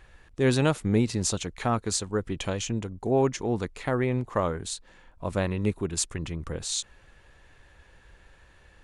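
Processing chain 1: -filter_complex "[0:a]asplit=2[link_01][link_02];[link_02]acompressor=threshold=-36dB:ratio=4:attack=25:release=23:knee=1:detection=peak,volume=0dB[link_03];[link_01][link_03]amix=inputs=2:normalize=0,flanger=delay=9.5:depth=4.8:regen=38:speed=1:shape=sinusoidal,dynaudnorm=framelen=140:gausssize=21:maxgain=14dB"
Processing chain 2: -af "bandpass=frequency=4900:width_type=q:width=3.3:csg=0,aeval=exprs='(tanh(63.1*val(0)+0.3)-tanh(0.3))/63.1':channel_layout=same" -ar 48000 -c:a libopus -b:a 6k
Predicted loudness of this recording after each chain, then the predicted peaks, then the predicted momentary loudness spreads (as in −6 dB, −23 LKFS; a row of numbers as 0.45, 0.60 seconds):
−19.0, −55.0 LKFS; −2.5, −34.0 dBFS; 8, 11 LU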